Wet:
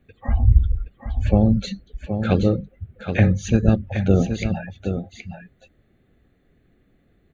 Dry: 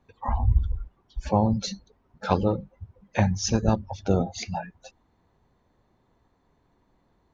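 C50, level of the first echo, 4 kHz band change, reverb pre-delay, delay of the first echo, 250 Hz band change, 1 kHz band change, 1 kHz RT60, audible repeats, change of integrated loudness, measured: none, -8.0 dB, -1.5 dB, none, 0.772 s, +7.0 dB, -4.5 dB, none, 1, +5.5 dB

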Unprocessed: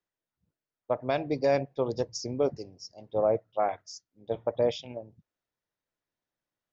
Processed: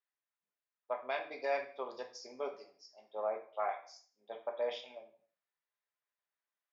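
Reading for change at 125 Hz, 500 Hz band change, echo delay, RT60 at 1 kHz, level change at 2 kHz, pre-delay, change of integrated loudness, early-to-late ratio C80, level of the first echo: under -35 dB, -11.0 dB, none, 0.50 s, -2.0 dB, 3 ms, -10.0 dB, 14.5 dB, none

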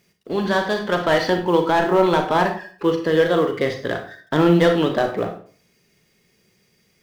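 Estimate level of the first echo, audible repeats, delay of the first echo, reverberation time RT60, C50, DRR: none, none, none, 0.45 s, 8.5 dB, 5.0 dB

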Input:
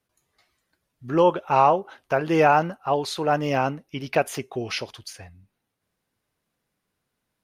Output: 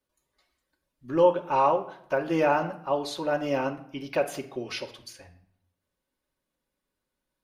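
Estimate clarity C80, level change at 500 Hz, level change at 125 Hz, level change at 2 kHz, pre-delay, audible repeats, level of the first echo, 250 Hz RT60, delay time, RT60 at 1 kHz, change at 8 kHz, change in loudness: 16.0 dB, -2.5 dB, -8.5 dB, -5.5 dB, 3 ms, none, none, 0.85 s, none, 0.65 s, -6.0 dB, -4.0 dB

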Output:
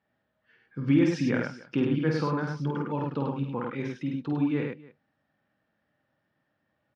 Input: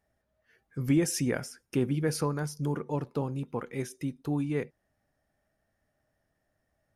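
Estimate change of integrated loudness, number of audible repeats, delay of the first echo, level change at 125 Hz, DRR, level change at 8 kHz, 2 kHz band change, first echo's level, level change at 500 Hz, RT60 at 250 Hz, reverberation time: +3.0 dB, 3, 50 ms, +1.5 dB, none, under -15 dB, +4.5 dB, -4.0 dB, +1.5 dB, none, none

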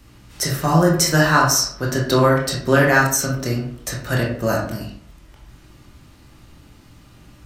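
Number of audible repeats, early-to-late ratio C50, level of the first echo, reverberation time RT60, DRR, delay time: none, 4.0 dB, none, 0.60 s, -2.5 dB, none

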